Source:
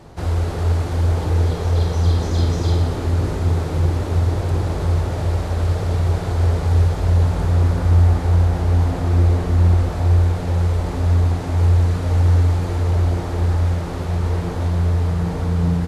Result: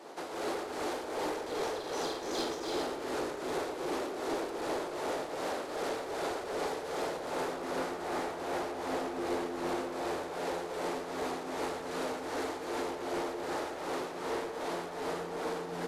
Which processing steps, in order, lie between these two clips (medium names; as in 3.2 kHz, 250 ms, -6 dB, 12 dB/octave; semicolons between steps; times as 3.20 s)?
high-pass 310 Hz 24 dB/octave; saturation -28 dBFS, distortion -13 dB; tremolo triangle 2.6 Hz, depth 70%; filtered feedback delay 116 ms, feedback 76%, level -10.5 dB